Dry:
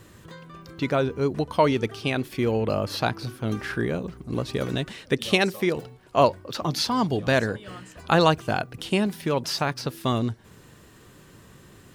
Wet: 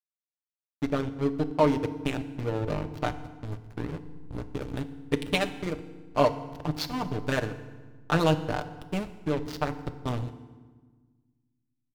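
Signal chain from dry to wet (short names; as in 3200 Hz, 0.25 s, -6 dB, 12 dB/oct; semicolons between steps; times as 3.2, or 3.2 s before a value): comb 6.7 ms, depth 75%; backlash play -16 dBFS; FDN reverb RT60 1.4 s, low-frequency decay 1.55×, high-frequency decay 0.75×, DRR 10.5 dB; gain -5 dB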